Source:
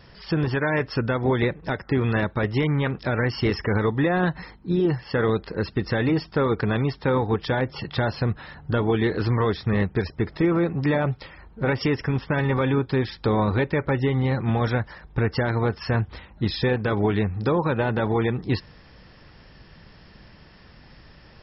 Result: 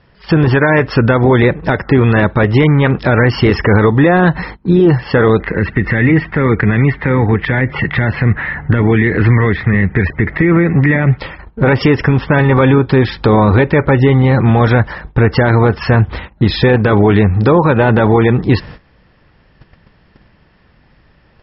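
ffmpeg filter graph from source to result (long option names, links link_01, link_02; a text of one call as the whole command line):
ffmpeg -i in.wav -filter_complex "[0:a]asettb=1/sr,asplit=3[link_01][link_02][link_03];[link_01]atrim=end=5.404[link_04];[link_02]atrim=start=5.4:end=11.18,asetpts=PTS-STARTPTS,afade=type=in:duration=0.004:curve=qsin,afade=type=out:start_time=5.776:duration=0.004:curve=qsin,lowpass=frequency=2000:width_type=q:width=5.8,acrossover=split=320|3000[link_05][link_06][link_07];[link_06]acompressor=threshold=-38dB:ratio=2:attack=3.2:release=140:knee=2.83:detection=peak[link_08];[link_05][link_08][link_07]amix=inputs=3:normalize=0[link_09];[link_03]atrim=start=11.176[link_10];[link_04][link_09]acrossfade=duration=0.004:curve1=hsin:curve2=qsin[link_11];[link_11][link_10]acrossfade=duration=0.004:curve1=qsin:curve2=hsin,lowpass=3200,agate=range=-17dB:threshold=-44dB:ratio=16:detection=peak,alimiter=level_in=17.5dB:limit=-1dB:release=50:level=0:latency=1,volume=-1dB" out.wav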